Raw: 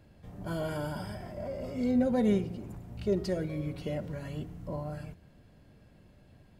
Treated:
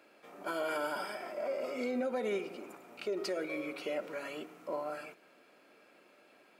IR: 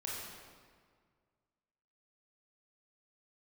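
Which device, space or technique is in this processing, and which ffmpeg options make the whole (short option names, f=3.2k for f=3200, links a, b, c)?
laptop speaker: -af "highpass=f=330:w=0.5412,highpass=f=330:w=1.3066,equalizer=f=1.3k:t=o:w=0.27:g=10.5,equalizer=f=2.4k:t=o:w=0.24:g=11,alimiter=level_in=5dB:limit=-24dB:level=0:latency=1:release=95,volume=-5dB,volume=2.5dB"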